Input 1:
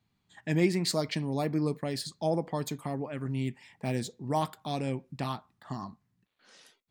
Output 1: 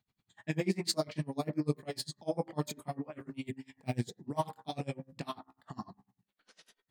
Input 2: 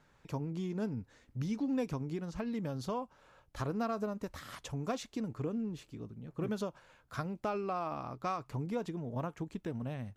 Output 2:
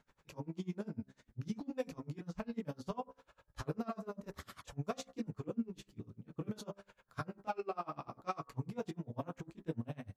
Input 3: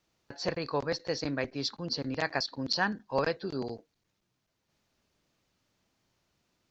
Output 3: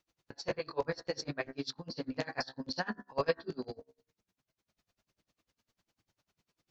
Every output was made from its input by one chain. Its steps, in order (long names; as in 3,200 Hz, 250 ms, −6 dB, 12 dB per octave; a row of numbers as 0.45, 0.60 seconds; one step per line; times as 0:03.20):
multi-voice chorus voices 2, 0.58 Hz, delay 23 ms, depth 4.8 ms
hum removal 66.27 Hz, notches 30
tremolo with a sine in dB 10 Hz, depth 28 dB
level +4.5 dB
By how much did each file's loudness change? −5.0, −5.5, −5.0 LU